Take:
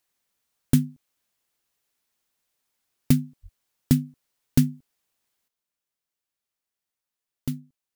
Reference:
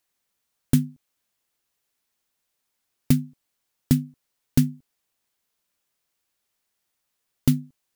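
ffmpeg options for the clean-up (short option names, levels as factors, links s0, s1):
-filter_complex "[0:a]asplit=3[s0][s1][s2];[s0]afade=t=out:st=3.42:d=0.02[s3];[s1]highpass=f=140:w=0.5412,highpass=f=140:w=1.3066,afade=t=in:st=3.42:d=0.02,afade=t=out:st=3.54:d=0.02[s4];[s2]afade=t=in:st=3.54:d=0.02[s5];[s3][s4][s5]amix=inputs=3:normalize=0,asetnsamples=n=441:p=0,asendcmd='5.48 volume volume 10dB',volume=1"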